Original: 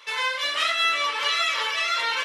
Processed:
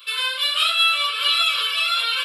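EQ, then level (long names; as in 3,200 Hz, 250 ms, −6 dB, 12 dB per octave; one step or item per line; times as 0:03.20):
spectral tilt +4.5 dB per octave
phaser with its sweep stopped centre 1,300 Hz, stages 8
0.0 dB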